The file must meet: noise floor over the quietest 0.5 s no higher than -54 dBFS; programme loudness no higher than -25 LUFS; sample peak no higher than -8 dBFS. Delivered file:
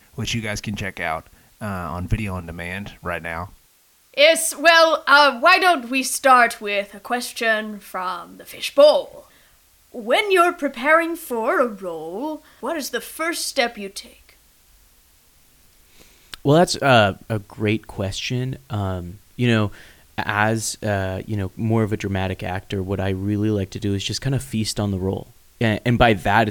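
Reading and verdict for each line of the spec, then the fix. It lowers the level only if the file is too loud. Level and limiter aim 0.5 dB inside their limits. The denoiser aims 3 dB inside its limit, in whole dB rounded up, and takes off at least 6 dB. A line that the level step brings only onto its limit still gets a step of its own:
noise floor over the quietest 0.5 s -57 dBFS: pass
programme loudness -20.0 LUFS: fail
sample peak -2.5 dBFS: fail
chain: trim -5.5 dB; peak limiter -8.5 dBFS

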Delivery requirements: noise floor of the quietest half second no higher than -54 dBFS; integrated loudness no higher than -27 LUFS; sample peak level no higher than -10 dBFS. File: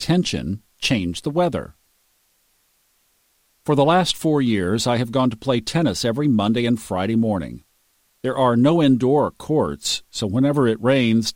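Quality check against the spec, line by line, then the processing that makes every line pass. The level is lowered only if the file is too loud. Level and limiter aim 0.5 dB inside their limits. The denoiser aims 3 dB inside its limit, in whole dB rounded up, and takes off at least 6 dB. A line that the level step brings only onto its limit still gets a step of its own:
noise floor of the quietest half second -64 dBFS: pass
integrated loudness -20.0 LUFS: fail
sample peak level -5.0 dBFS: fail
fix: trim -7.5 dB

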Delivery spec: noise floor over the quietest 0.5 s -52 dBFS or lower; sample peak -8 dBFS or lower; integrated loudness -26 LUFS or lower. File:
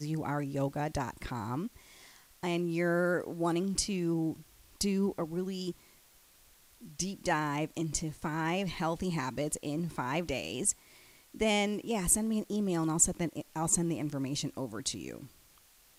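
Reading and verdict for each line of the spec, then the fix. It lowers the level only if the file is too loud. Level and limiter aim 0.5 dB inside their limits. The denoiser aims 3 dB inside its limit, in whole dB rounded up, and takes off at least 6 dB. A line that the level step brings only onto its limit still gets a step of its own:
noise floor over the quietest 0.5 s -62 dBFS: pass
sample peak -12.5 dBFS: pass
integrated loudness -32.5 LUFS: pass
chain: none needed

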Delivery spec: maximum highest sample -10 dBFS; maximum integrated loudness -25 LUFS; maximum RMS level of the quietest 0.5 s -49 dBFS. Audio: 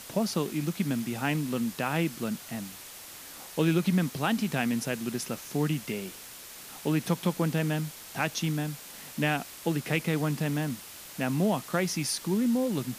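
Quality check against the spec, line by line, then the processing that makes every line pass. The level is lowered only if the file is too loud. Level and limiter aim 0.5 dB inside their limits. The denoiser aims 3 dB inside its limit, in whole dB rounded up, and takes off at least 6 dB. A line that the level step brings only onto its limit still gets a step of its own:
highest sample -13.5 dBFS: pass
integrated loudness -29.5 LUFS: pass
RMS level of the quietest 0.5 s -46 dBFS: fail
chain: noise reduction 6 dB, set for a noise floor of -46 dBFS

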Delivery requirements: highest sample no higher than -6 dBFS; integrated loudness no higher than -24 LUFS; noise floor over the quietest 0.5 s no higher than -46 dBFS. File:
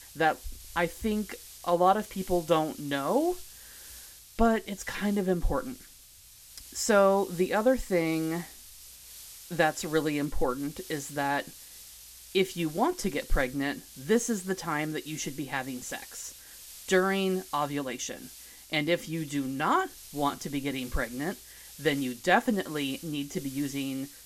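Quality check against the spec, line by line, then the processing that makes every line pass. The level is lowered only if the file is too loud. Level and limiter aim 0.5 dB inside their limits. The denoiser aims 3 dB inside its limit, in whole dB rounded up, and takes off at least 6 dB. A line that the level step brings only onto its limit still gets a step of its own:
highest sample -8.5 dBFS: pass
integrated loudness -29.5 LUFS: pass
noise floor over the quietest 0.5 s -53 dBFS: pass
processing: none needed

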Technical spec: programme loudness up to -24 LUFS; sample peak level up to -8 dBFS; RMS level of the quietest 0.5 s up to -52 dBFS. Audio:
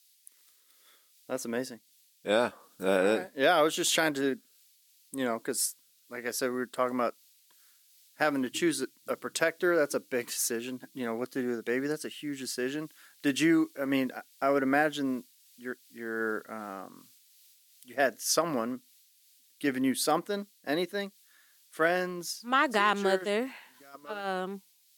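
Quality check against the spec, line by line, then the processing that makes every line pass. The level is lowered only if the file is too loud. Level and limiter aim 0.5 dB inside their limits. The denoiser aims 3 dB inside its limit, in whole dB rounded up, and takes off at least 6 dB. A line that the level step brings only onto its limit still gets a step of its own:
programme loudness -30.0 LUFS: pass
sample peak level -11.0 dBFS: pass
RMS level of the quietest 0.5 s -64 dBFS: pass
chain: none needed

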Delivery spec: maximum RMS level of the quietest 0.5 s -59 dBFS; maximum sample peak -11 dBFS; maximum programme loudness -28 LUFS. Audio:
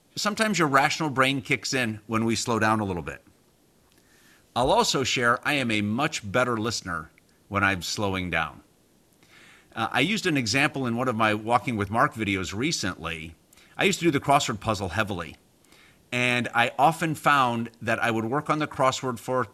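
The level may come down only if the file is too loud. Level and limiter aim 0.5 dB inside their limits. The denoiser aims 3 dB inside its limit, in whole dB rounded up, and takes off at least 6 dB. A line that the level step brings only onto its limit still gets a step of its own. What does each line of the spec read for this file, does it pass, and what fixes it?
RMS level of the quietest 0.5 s -62 dBFS: pass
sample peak -5.5 dBFS: fail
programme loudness -24.5 LUFS: fail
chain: trim -4 dB; peak limiter -11.5 dBFS

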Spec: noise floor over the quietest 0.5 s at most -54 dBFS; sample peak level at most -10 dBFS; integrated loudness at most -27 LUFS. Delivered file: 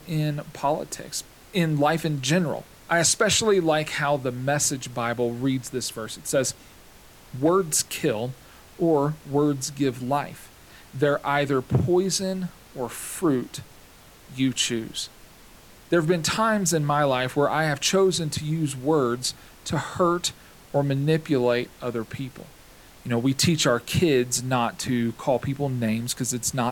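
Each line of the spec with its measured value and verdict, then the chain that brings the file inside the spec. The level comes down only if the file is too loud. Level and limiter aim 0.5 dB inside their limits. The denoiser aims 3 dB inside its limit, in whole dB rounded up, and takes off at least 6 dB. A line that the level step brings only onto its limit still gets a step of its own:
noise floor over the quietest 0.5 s -50 dBFS: fail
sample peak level -8.0 dBFS: fail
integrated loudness -24.0 LUFS: fail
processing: noise reduction 6 dB, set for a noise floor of -50 dBFS; trim -3.5 dB

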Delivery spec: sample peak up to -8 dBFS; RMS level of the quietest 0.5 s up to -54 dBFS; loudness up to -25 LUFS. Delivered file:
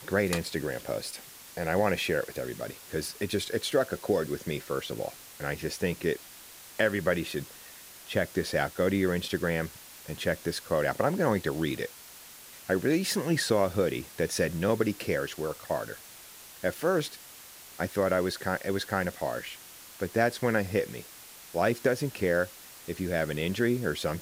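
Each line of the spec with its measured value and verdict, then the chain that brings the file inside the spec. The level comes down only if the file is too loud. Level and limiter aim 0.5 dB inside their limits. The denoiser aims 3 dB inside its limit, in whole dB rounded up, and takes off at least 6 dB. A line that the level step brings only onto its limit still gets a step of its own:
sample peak -11.5 dBFS: pass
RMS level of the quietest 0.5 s -49 dBFS: fail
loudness -30.0 LUFS: pass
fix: noise reduction 8 dB, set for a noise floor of -49 dBFS

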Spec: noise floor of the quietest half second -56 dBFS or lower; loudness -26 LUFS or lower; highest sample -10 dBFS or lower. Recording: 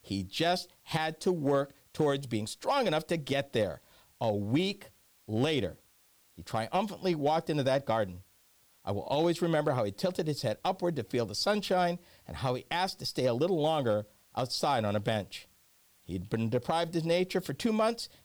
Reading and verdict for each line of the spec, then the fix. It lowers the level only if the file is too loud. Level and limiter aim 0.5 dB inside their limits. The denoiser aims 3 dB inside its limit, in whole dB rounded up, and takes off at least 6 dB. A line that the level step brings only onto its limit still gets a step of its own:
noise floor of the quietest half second -65 dBFS: pass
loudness -31.5 LUFS: pass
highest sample -20.0 dBFS: pass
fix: none needed

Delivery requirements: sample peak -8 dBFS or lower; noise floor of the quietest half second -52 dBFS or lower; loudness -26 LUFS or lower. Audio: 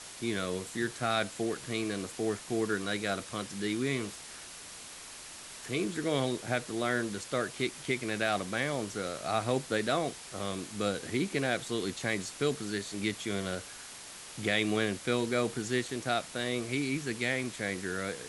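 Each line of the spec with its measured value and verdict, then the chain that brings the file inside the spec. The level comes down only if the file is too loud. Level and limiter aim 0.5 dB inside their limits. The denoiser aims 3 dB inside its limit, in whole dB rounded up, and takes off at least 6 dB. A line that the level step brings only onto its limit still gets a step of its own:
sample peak -14.0 dBFS: pass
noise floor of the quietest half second -47 dBFS: fail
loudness -32.5 LUFS: pass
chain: noise reduction 8 dB, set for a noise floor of -47 dBFS

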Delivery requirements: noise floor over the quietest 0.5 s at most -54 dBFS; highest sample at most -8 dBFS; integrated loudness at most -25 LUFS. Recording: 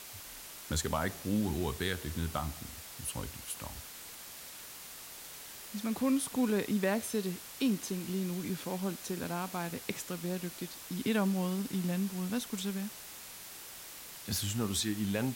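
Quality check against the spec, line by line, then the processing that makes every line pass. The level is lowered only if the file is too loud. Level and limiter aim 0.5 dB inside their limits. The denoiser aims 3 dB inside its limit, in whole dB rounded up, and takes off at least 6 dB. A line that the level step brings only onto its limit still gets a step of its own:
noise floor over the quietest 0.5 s -48 dBFS: fail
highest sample -18.0 dBFS: pass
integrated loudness -35.5 LUFS: pass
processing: noise reduction 9 dB, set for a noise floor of -48 dBFS

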